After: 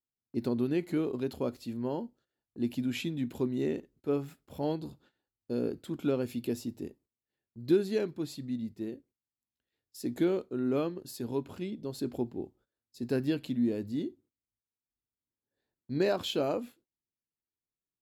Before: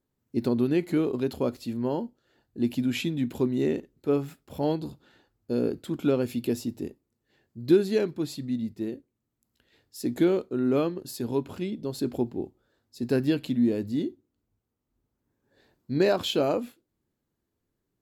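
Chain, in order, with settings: gate -55 dBFS, range -17 dB; trim -5.5 dB

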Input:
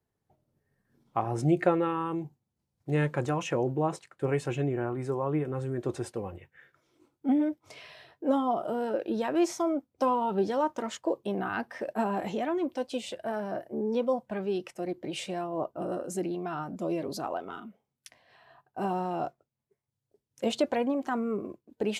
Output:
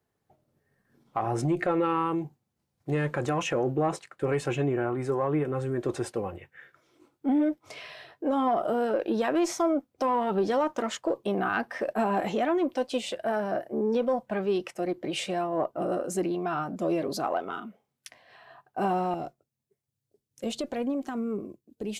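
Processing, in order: single-diode clipper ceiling -14.5 dBFS; bass shelf 95 Hz -5.5 dB; band-stop 930 Hz, Q 17; peak limiter -23 dBFS, peak gain reduction 8.5 dB; peaking EQ 1.2 kHz +3 dB 2.9 oct, from 19.14 s -8 dB, from 21.44 s -14 dB; trim +3.5 dB

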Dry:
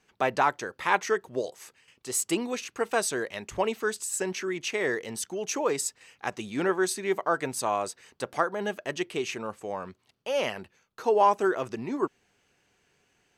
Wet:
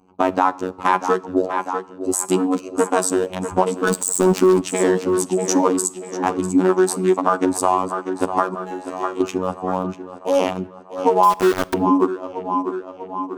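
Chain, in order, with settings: local Wiener filter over 25 samples; bass shelf 470 Hz -4 dB; 3.88–4.61 s: waveshaping leveller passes 5; 8.54–9.21 s: feedback comb 75 Hz, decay 0.67 s, harmonics all, mix 100%; robot voice 92.7 Hz; ten-band graphic EQ 250 Hz +12 dB, 500 Hz -3 dB, 1 kHz +7 dB, 2 kHz -8 dB, 4 kHz -4 dB, 8 kHz +4 dB; tape echo 643 ms, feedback 59%, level -13 dB, low-pass 5.7 kHz; 11.23–11.74 s: small samples zeroed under -28.5 dBFS; compression 3:1, threshold -29 dBFS, peak gain reduction 10.5 dB; reverberation RT60 0.85 s, pre-delay 23 ms, DRR 19.5 dB; loudness maximiser +16.5 dB; trim -1 dB

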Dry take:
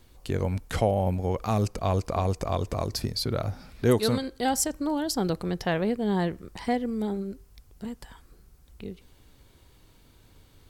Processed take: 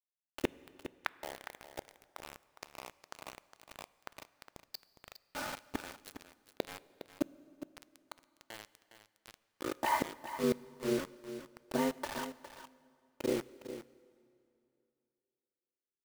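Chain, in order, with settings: median filter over 5 samples; level-controlled noise filter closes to 680 Hz, open at -21.5 dBFS; high-pass 510 Hz 12 dB/octave; treble shelf 8.9 kHz +10.5 dB; in parallel at +3 dB: compression 5:1, threshold -39 dBFS, peak gain reduction 16 dB; on the sum: dynamic bell 760 Hz, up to +4 dB, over -39 dBFS, Q 1.6; granular stretch 1.5×, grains 20 ms; inverted gate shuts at -27 dBFS, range -32 dB; word length cut 8-bit, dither none; delay 410 ms -12 dB; plate-style reverb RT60 2.7 s, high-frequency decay 0.8×, DRR 18.5 dB; trim +8.5 dB

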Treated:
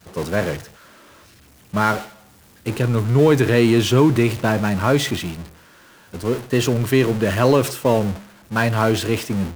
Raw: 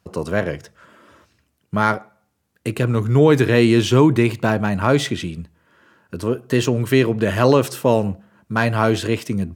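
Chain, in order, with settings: jump at every zero crossing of -22 dBFS; expander -18 dBFS; trim -2 dB

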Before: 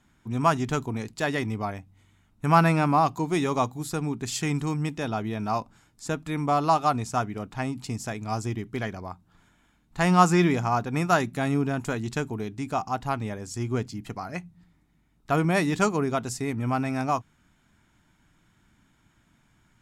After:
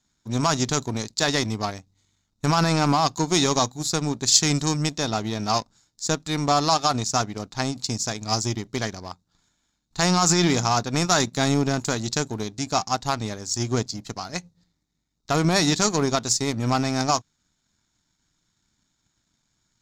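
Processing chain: peak limiter -16.5 dBFS, peak gain reduction 11.5 dB; power-law waveshaper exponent 1.4; high-order bell 5.2 kHz +15 dB 1.2 oct; trim +6 dB

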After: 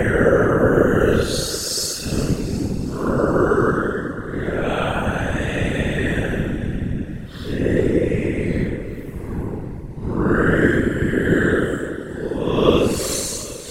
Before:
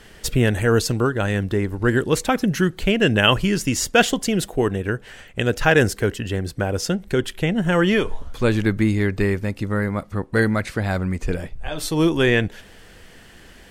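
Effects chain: Paulstretch 8.6×, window 0.05 s, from 0.65 s; two-band feedback delay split 310 Hz, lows 229 ms, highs 368 ms, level -12.5 dB; whisper effect

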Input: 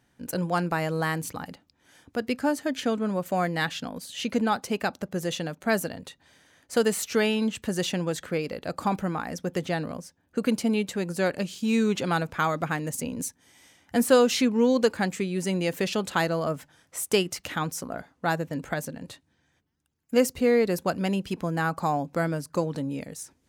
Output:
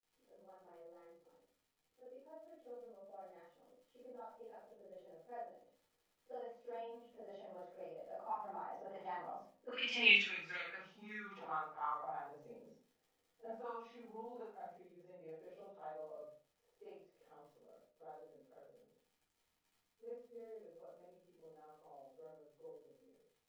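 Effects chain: short-time spectra conjugated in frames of 106 ms; Doppler pass-by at 10.07 s, 22 m/s, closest 1.4 m; steep low-pass 6.1 kHz; bass shelf 390 Hz -6 dB; band-stop 4.2 kHz, Q 11; in parallel at +2 dB: compression, threshold -59 dBFS, peak gain reduction 26 dB; on the sum: auto-wah 460–2600 Hz, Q 4, up, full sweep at -42.5 dBFS; crackle 96 per s -78 dBFS; simulated room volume 260 m³, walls furnished, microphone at 4 m; trim +11 dB

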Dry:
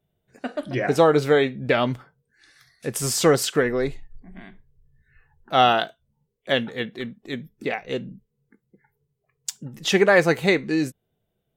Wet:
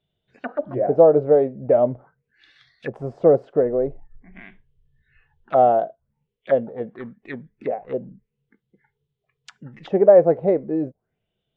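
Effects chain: touch-sensitive low-pass 610–3500 Hz down, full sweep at -23.5 dBFS; trim -3.5 dB

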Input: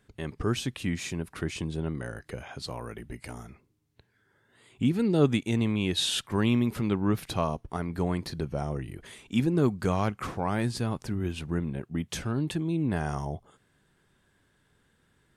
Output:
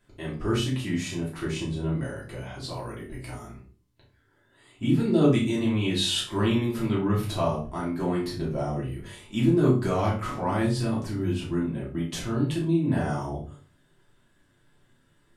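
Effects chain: flutter echo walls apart 5.3 m, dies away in 0.28 s; simulated room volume 130 m³, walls furnished, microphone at 2.9 m; trim -5.5 dB

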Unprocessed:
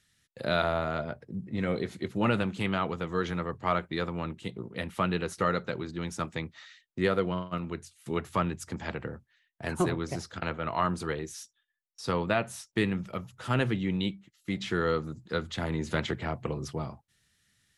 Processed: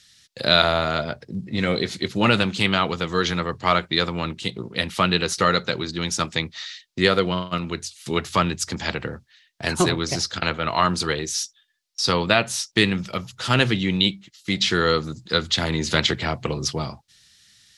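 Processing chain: peaking EQ 4.7 kHz +14.5 dB 1.7 oct; trim +6.5 dB

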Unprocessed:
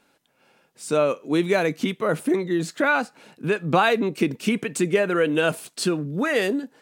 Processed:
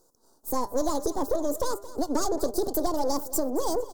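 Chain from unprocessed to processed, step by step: partial rectifier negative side -12 dB; Chebyshev band-stop 460–4000 Hz, order 2; peaking EQ 440 Hz -7.5 dB 0.64 oct; de-hum 115.7 Hz, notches 15; in parallel at +1.5 dB: compression, threshold -32 dBFS, peak gain reduction 12 dB; on the sum: saturation -13 dBFS, distortion -22 dB; on a send: feedback delay 388 ms, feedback 28%, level -16.5 dB; on the sum: speed mistake 45 rpm record played at 78 rpm

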